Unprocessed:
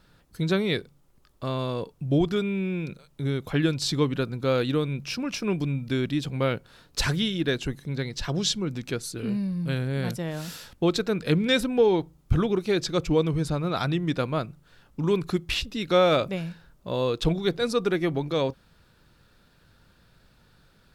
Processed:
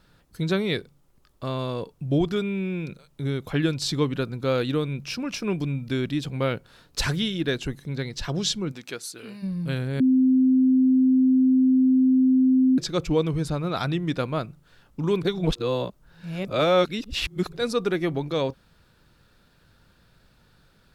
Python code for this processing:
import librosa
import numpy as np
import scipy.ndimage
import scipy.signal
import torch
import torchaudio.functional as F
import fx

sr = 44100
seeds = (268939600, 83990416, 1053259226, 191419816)

y = fx.highpass(x, sr, hz=fx.line((8.71, 490.0), (9.42, 1100.0)), slope=6, at=(8.71, 9.42), fade=0.02)
y = fx.edit(y, sr, fx.bleep(start_s=10.0, length_s=2.78, hz=259.0, db=-15.0),
    fx.reverse_span(start_s=15.23, length_s=2.3), tone=tone)